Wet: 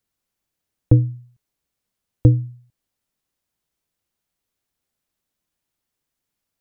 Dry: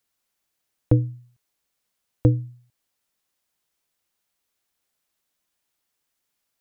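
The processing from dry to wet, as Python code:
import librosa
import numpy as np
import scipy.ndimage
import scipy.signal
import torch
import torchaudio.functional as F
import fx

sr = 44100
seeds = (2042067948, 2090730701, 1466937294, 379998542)

y = fx.low_shelf(x, sr, hz=360.0, db=10.5)
y = F.gain(torch.from_numpy(y), -4.0).numpy()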